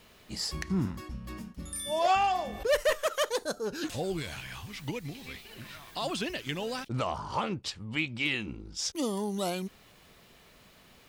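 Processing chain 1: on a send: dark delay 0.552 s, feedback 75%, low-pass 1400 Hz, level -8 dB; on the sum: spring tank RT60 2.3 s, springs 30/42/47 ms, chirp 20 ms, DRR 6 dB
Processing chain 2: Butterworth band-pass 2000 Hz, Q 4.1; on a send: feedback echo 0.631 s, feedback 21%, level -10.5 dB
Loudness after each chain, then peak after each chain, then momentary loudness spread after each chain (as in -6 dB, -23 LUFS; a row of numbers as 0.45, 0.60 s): -31.0, -44.5 LUFS; -14.5, -23.5 dBFS; 12, 21 LU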